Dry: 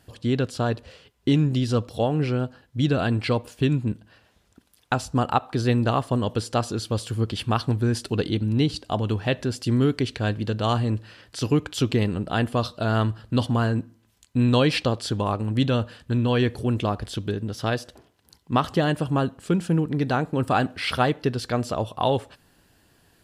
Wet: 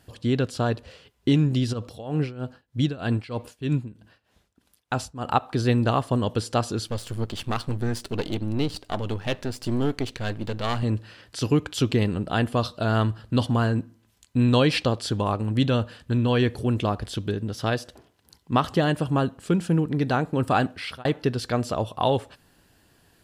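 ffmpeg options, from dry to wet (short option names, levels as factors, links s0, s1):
-filter_complex "[0:a]asplit=3[s0][s1][s2];[s0]afade=t=out:st=1.72:d=0.02[s3];[s1]tremolo=f=3.2:d=0.87,afade=t=in:st=1.72:d=0.02,afade=t=out:st=5.26:d=0.02[s4];[s2]afade=t=in:st=5.26:d=0.02[s5];[s3][s4][s5]amix=inputs=3:normalize=0,asettb=1/sr,asplit=3[s6][s7][s8];[s6]atrim=end=6.874[s9];[s7]atrim=start=6.87:end=10.83,asetpts=PTS-STARTPTS,afade=t=in:d=0.004:c=qsin,afade=t=out:st=3.956:d=0.004:c=qsin,aeval=exprs='if(lt(val(0),0),0.251*val(0),val(0))':c=same[s10];[s8]atrim=start=10.826[s11];[s9][s10]acrossfade=d=0.004:c1=hsin:c2=qsin[s12];[s12][s11]acrossfade=d=0.004:c1=qsin:c2=hsin,asplit=2[s13][s14];[s13]atrim=end=21.05,asetpts=PTS-STARTPTS,afade=t=out:st=20.65:d=0.4[s15];[s14]atrim=start=21.05,asetpts=PTS-STARTPTS,afade=t=in:d=0.004:c=hsin[s16];[s15][s16]concat=n=2:v=0:a=1"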